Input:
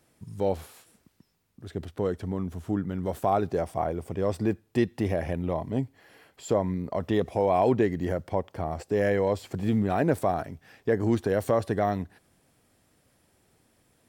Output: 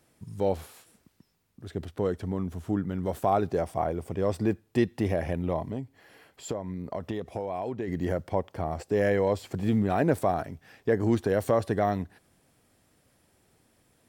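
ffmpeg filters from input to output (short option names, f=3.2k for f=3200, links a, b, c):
-filter_complex "[0:a]asplit=3[a][b][c];[a]afade=t=out:st=5.7:d=0.02[d];[b]acompressor=threshold=-30dB:ratio=6,afade=t=in:st=5.7:d=0.02,afade=t=out:st=7.87:d=0.02[e];[c]afade=t=in:st=7.87:d=0.02[f];[d][e][f]amix=inputs=3:normalize=0"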